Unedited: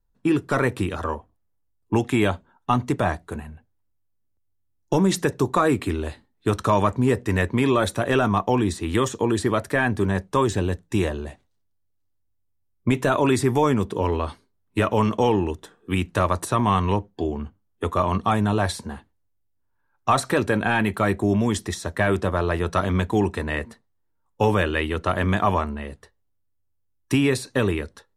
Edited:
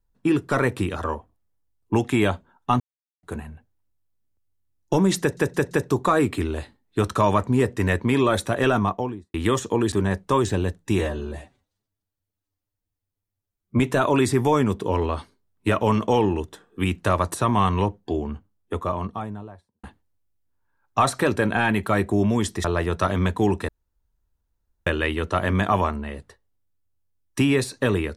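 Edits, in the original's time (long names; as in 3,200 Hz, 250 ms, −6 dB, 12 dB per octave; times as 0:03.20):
0:02.80–0:03.23: silence
0:05.20: stutter 0.17 s, 4 plays
0:08.22–0:08.83: fade out and dull
0:09.41–0:09.96: remove
0:11.03–0:12.90: time-stretch 1.5×
0:17.38–0:18.94: fade out and dull
0:21.75–0:22.38: remove
0:23.42–0:24.60: fill with room tone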